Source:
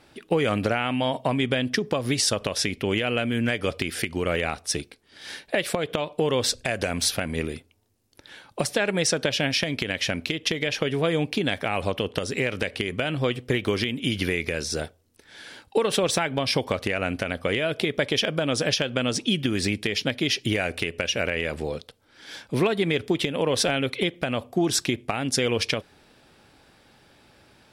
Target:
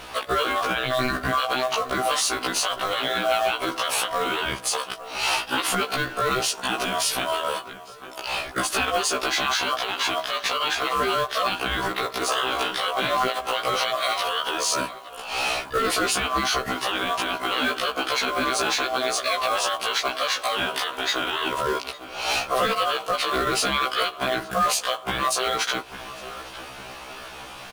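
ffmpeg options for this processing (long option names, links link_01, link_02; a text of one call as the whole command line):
ffmpeg -i in.wav -filter_complex "[0:a]equalizer=frequency=11000:width=0.92:gain=3.5,acompressor=threshold=-32dB:ratio=6,asettb=1/sr,asplit=3[link_01][link_02][link_03];[link_01]atrim=end=12.284[link_04];[link_02]atrim=start=12.28:end=12.89,asetpts=PTS-STARTPTS,afade=type=in:duration=0.004:curve=qsin,afade=type=out:start_time=0.606:duration=0.004:curve=qsin,asplit=2[link_05][link_06];[link_06]adelay=38,volume=-7.5dB[link_07];[link_05][link_07]amix=inputs=2:normalize=0,atrim=end_sample=26901[link_08];[link_03]atrim=start=12.886[link_09];[link_04][link_08]acrossfade=duration=0.004:curve1=hsin:curve2=qsin[link_10];[link_10][link_09]acrossfade=duration=0.004:curve1=qsin:curve2=hsin,asplit=2[link_11][link_12];[link_12]adelay=852,lowpass=frequency=1600:poles=1,volume=-19dB,asplit=2[link_13][link_14];[link_14]adelay=852,lowpass=frequency=1600:poles=1,volume=0.51,asplit=2[link_15][link_16];[link_16]adelay=852,lowpass=frequency=1600:poles=1,volume=0.51,asplit=2[link_17][link_18];[link_18]adelay=852,lowpass=frequency=1600:poles=1,volume=0.51[link_19];[link_11][link_13][link_15][link_17][link_19]amix=inputs=5:normalize=0,acrusher=bits=4:mode=log:mix=0:aa=0.000001,equalizer=frequency=2000:width=1.7:gain=7.5,aeval=exprs='val(0)*sin(2*PI*890*n/s)':channel_layout=same,alimiter=level_in=27.5dB:limit=-1dB:release=50:level=0:latency=1,afftfilt=real='re*1.73*eq(mod(b,3),0)':imag='im*1.73*eq(mod(b,3),0)':win_size=2048:overlap=0.75,volume=-8dB" out.wav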